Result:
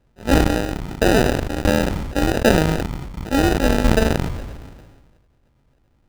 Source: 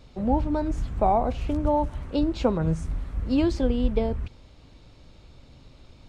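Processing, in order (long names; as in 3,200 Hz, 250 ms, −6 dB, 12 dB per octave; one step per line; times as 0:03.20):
peak hold with a decay on every bin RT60 0.36 s
harmonic generator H 7 −16 dB, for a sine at −8 dBFS
in parallel at +1 dB: brickwall limiter −13.5 dBFS, peak gain reduction 6 dB
on the sum: sample-rate reduction 1,100 Hz, jitter 0%
high-shelf EQ 6,200 Hz −5.5 dB
level that may fall only so fast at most 36 dB per second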